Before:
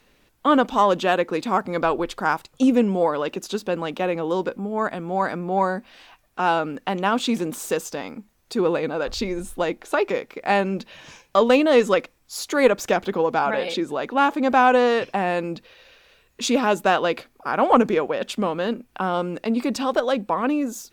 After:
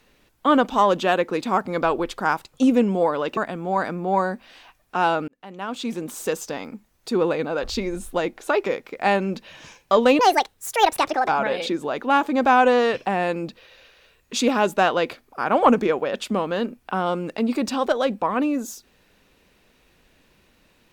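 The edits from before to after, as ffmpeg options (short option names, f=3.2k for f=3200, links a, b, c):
-filter_complex "[0:a]asplit=5[a][b][c][d][e];[a]atrim=end=3.372[f];[b]atrim=start=4.808:end=6.72,asetpts=PTS-STARTPTS,afade=t=out:st=1.908:d=0.004:c=hsin[g];[c]atrim=start=6.72:end=11.634,asetpts=PTS-STARTPTS,afade=t=in:d=1.13[h];[d]atrim=start=11.63:end=13.36,asetpts=PTS-STARTPTS,asetrate=69678,aresample=44100[i];[e]atrim=start=13.356[j];[g][h]concat=n=2:v=0:a=1[k];[f][k]acrossfade=d=0.004:c1=hsin:c2=hsin[l];[l][i]acrossfade=d=0.004:c1=hsin:c2=hsin[m];[m][j]acrossfade=d=0.004:c1=hsin:c2=hsin"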